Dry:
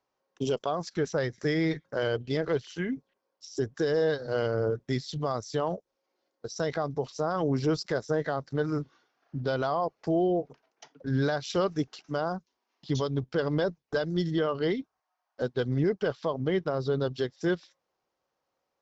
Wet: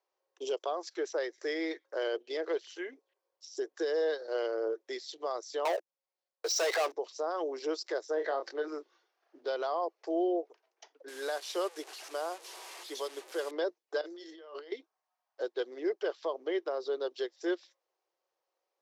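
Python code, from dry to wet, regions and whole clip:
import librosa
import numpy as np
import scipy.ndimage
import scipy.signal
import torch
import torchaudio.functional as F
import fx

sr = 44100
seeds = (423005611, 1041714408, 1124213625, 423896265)

y = fx.chain(x, sr, fx.highpass(hz=640.0, slope=12),
    fx.leveller(passes=5), at=(5.65, 6.92))
y = fx.chain(y, sr, fx.air_absorb(metres=100.0),
    fx.doubler(ms=26.0, db=-8.5),
    fx.env_flatten(amount_pct=50), at=(8.14, 8.68))
y = fx.chain(y, sr, fx.delta_mod(bps=64000, step_db=-36.5),
    fx.low_shelf(hz=260.0, db=-9.0), at=(11.08, 13.51))
y = fx.chain(y, sr, fx.highpass(hz=470.0, slope=6),
    fx.doubler(ms=24.0, db=-12.5),
    fx.over_compress(threshold_db=-41.0, ratio=-1.0), at=(14.01, 14.72))
y = scipy.signal.sosfilt(scipy.signal.cheby1(5, 1.0, 340.0, 'highpass', fs=sr, output='sos'), y)
y = fx.peak_eq(y, sr, hz=1400.0, db=-3.5, octaves=0.24)
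y = F.gain(torch.from_numpy(y), -3.5).numpy()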